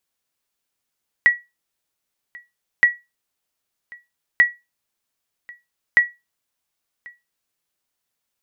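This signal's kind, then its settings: sonar ping 1930 Hz, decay 0.22 s, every 1.57 s, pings 4, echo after 1.09 s, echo -26 dB -5 dBFS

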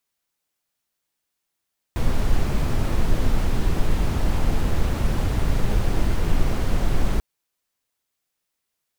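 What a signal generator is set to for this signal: noise brown, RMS -18 dBFS 5.24 s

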